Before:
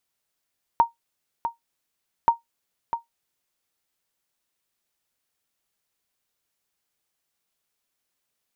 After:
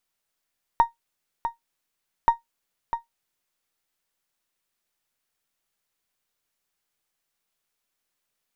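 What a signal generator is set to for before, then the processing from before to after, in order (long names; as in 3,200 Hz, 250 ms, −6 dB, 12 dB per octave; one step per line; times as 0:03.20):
ping with an echo 930 Hz, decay 0.14 s, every 1.48 s, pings 2, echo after 0.65 s, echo −9.5 dB −8 dBFS
gain on one half-wave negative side −3 dB
parametric band 1,600 Hz +2 dB 1.8 octaves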